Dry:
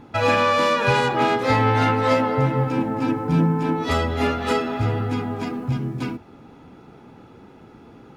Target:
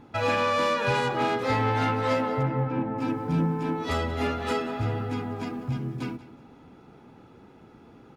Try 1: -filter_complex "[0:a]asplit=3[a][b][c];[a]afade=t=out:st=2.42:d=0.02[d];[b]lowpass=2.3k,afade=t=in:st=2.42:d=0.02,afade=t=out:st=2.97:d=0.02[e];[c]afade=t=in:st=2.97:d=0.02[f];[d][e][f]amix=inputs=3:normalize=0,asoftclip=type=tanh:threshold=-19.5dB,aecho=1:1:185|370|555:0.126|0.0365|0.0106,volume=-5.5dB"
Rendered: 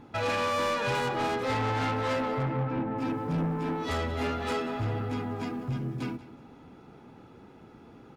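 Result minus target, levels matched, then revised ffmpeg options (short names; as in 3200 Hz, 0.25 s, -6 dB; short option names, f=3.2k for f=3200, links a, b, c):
soft clip: distortion +13 dB
-filter_complex "[0:a]asplit=3[a][b][c];[a]afade=t=out:st=2.42:d=0.02[d];[b]lowpass=2.3k,afade=t=in:st=2.42:d=0.02,afade=t=out:st=2.97:d=0.02[e];[c]afade=t=in:st=2.97:d=0.02[f];[d][e][f]amix=inputs=3:normalize=0,asoftclip=type=tanh:threshold=-9dB,aecho=1:1:185|370|555:0.126|0.0365|0.0106,volume=-5.5dB"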